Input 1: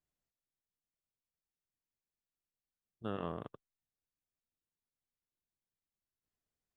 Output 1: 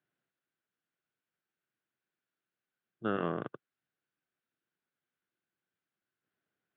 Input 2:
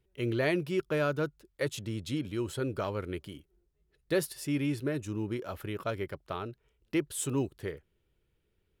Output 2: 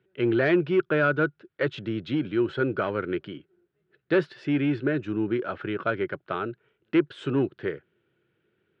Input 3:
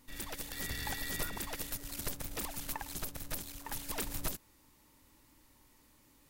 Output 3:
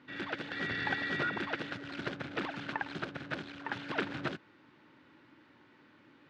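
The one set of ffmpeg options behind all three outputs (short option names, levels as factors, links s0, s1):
-af "aeval=exprs='0.178*sin(PI/2*1.78*val(0)/0.178)':c=same,highpass=f=120:w=0.5412,highpass=f=120:w=1.3066,equalizer=f=350:t=q:w=4:g=5,equalizer=f=970:t=q:w=4:g=-3,equalizer=f=1500:t=q:w=4:g=10,lowpass=f=3400:w=0.5412,lowpass=f=3400:w=1.3066,volume=0.708"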